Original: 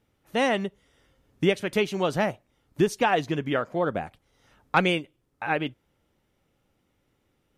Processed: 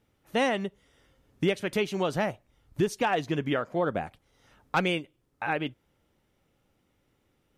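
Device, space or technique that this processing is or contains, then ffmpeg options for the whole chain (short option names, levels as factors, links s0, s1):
clipper into limiter: -filter_complex "[0:a]asettb=1/sr,asplit=3[s0][s1][s2];[s0]atrim=end=2.144[s3];[s1]atrim=start=2.14:end=2.81,asetpts=PTS-STARTPTS,afade=t=in:d=0.004:c=qsin,afade=t=out:st=0.666:d=0.004:c=qsin,asubboost=boost=12:cutoff=130[s4];[s2]atrim=start=2.806[s5];[s3][s4]acrossfade=d=0.004:c1=hsin:c2=qsin[s6];[s6][s5]acrossfade=d=0.004:c1=qsin:c2=hsin,asoftclip=type=hard:threshold=0.237,alimiter=limit=0.15:level=0:latency=1:release=294"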